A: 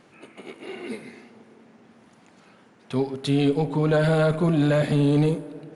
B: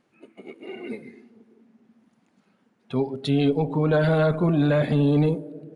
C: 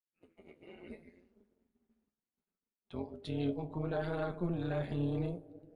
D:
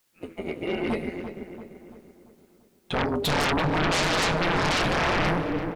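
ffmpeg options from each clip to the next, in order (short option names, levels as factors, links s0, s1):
-af "afftdn=nr=14:nf=-40"
-af "tremolo=f=180:d=0.824,flanger=delay=9.7:depth=4.9:regen=52:speed=0.71:shape=triangular,agate=range=0.0224:threshold=0.00112:ratio=3:detection=peak,volume=0.398"
-filter_complex "[0:a]aeval=exprs='0.0708*sin(PI/2*10*val(0)/0.0708)':c=same,asplit=2[s0][s1];[s1]adelay=340,lowpass=f=2400:p=1,volume=0.355,asplit=2[s2][s3];[s3]adelay=340,lowpass=f=2400:p=1,volume=0.5,asplit=2[s4][s5];[s5]adelay=340,lowpass=f=2400:p=1,volume=0.5,asplit=2[s6][s7];[s7]adelay=340,lowpass=f=2400:p=1,volume=0.5,asplit=2[s8][s9];[s9]adelay=340,lowpass=f=2400:p=1,volume=0.5,asplit=2[s10][s11];[s11]adelay=340,lowpass=f=2400:p=1,volume=0.5[s12];[s0][s2][s4][s6][s8][s10][s12]amix=inputs=7:normalize=0,volume=1.26"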